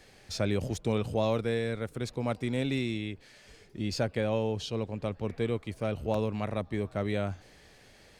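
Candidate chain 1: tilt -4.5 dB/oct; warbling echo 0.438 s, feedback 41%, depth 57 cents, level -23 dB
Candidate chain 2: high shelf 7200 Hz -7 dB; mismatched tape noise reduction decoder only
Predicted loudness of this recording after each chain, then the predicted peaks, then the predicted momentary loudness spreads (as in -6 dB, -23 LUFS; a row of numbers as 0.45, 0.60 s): -22.5, -32.5 LUFS; -7.0, -16.5 dBFS; 5, 7 LU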